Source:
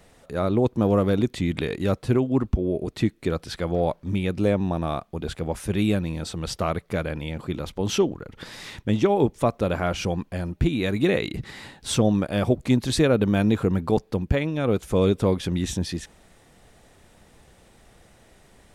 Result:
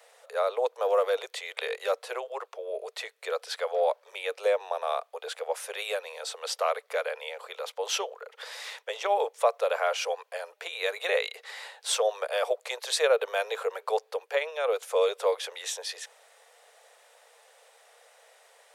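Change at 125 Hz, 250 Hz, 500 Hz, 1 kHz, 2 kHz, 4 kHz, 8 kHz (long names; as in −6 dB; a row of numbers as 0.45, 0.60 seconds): below −40 dB, below −35 dB, −2.5 dB, 0.0 dB, 0.0 dB, 0.0 dB, 0.0 dB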